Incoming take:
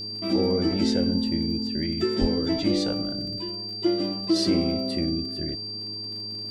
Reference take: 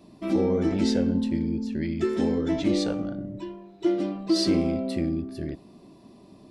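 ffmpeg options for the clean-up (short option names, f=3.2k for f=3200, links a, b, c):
-filter_complex "[0:a]adeclick=t=4,bandreject=f=105.8:t=h:w=4,bandreject=f=211.6:t=h:w=4,bandreject=f=317.4:t=h:w=4,bandreject=f=423.2:t=h:w=4,bandreject=f=4.7k:w=30,asplit=3[a][b][c];[a]afade=t=out:st=2.2:d=0.02[d];[b]highpass=f=140:w=0.5412,highpass=f=140:w=1.3066,afade=t=in:st=2.2:d=0.02,afade=t=out:st=2.32:d=0.02[e];[c]afade=t=in:st=2.32:d=0.02[f];[d][e][f]amix=inputs=3:normalize=0"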